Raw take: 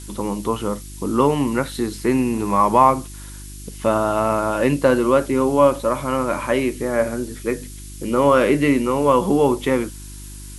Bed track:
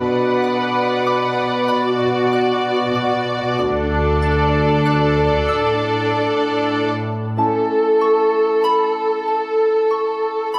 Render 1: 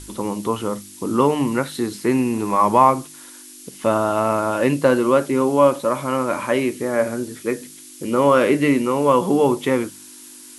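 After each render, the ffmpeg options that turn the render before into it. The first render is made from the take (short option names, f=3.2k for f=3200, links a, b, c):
-af "bandreject=f=50:t=h:w=4,bandreject=f=100:t=h:w=4,bandreject=f=150:t=h:w=4,bandreject=f=200:t=h:w=4"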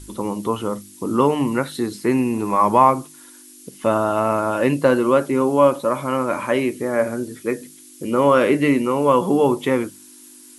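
-af "afftdn=nr=6:nf=-42"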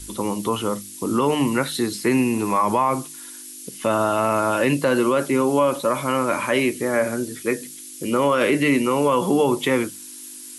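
-filter_complex "[0:a]acrossover=split=270|1800[a][b][c];[c]acontrast=74[d];[a][b][d]amix=inputs=3:normalize=0,alimiter=limit=-9.5dB:level=0:latency=1:release=39"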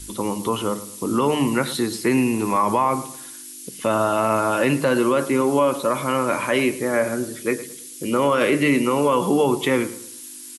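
-filter_complex "[0:a]asplit=2[a][b];[b]adelay=109,lowpass=f=2k:p=1,volume=-14dB,asplit=2[c][d];[d]adelay=109,lowpass=f=2k:p=1,volume=0.37,asplit=2[e][f];[f]adelay=109,lowpass=f=2k:p=1,volume=0.37,asplit=2[g][h];[h]adelay=109,lowpass=f=2k:p=1,volume=0.37[i];[a][c][e][g][i]amix=inputs=5:normalize=0"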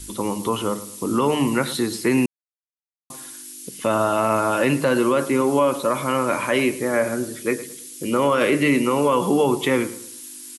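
-filter_complex "[0:a]asplit=3[a][b][c];[a]atrim=end=2.26,asetpts=PTS-STARTPTS,afade=t=out:st=2.256:d=0.004:c=hsin[d];[b]atrim=start=2.26:end=3.1,asetpts=PTS-STARTPTS,volume=0[e];[c]atrim=start=3.1,asetpts=PTS-STARTPTS,afade=t=in:d=0.004:c=hsin[f];[d][e][f]concat=n=3:v=0:a=1"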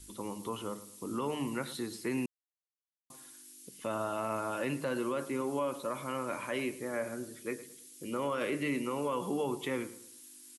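-af "volume=-15dB"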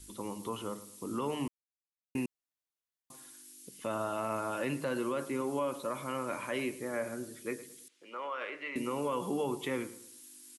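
-filter_complex "[0:a]asettb=1/sr,asplit=3[a][b][c];[a]atrim=end=7.884[d];[b]atrim=start=7.88:end=8.76,asetpts=PTS-STARTPTS,afade=t=in:d=0.004:c=qsin,afade=t=out:st=0.876:d=0.004:c=qsin,highpass=770,lowpass=2.7k[e];[c]atrim=start=8.756[f];[d][e]acrossfade=d=0.004:c1=hsin:c2=qsin[g];[g][f]acrossfade=d=0.004:c1=qsin:c2=hsin,asplit=3[h][i][j];[h]atrim=end=1.48,asetpts=PTS-STARTPTS,afade=t=out:st=1.476:d=0.004:c=hsin[k];[i]atrim=start=1.48:end=2.15,asetpts=PTS-STARTPTS,volume=0[l];[j]atrim=start=2.15,asetpts=PTS-STARTPTS,afade=t=in:d=0.004:c=hsin[m];[k][l][m]concat=n=3:v=0:a=1"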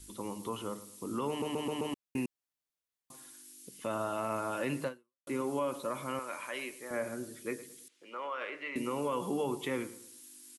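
-filter_complex "[0:a]asettb=1/sr,asplit=3[a][b][c];[a]atrim=end=6.194[d];[b]atrim=start=6.19:end=6.91,asetpts=PTS-STARTPTS,afade=t=in:d=0.004:c=qsin,afade=t=out:st=0.716:d=0.004:c=qsin,highpass=f=940:p=1[e];[c]atrim=start=6.906[f];[d][e]acrossfade=d=0.004:c1=hsin:c2=qsin[g];[g][f]acrossfade=d=0.004:c1=qsin:c2=hsin,asplit=7[h][i][j][k][l][m][n];[h]atrim=end=1.422[o];[i]atrim=start=1.288:end=1.422[p];[j]atrim=start=1.288:end=1.422[q];[k]atrim=start=1.288:end=1.422[r];[l]atrim=start=1.288:end=1.422[s];[m]atrim=start=1.938:end=5.27,asetpts=PTS-STARTPTS,afade=t=out:st=2.932:d=0.4:c=exp[t];[n]atrim=start=5.27,asetpts=PTS-STARTPTS,afade=t=in:d=0.004:c=hsin[u];[o][p]acrossfade=d=0.004:c1=hsin:c2=hsin[v];[v][q]acrossfade=d=0.004:c1=hsin:c2=hsin[w];[w][r]acrossfade=d=0.004:c1=hsin:c2=hsin[x];[x][s]acrossfade=d=0.004:c1=hsin:c2=hsin[y];[t][u]concat=n=2:v=0:a=1[z];[y][z]acrossfade=d=0.004:c1=hsin:c2=hsin"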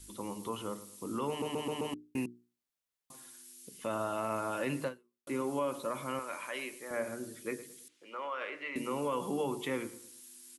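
-af "bandreject=f=60:t=h:w=6,bandreject=f=120:t=h:w=6,bandreject=f=180:t=h:w=6,bandreject=f=240:t=h:w=6,bandreject=f=300:t=h:w=6,bandreject=f=360:t=h:w=6,bandreject=f=420:t=h:w=6"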